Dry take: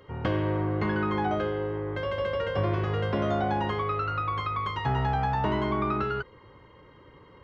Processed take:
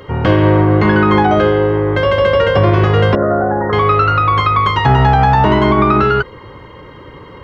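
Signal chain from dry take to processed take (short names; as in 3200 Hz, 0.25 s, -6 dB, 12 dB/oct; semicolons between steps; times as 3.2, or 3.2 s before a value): 3.15–3.73 rippled Chebyshev low-pass 1900 Hz, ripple 9 dB; maximiser +18.5 dB; gain -1 dB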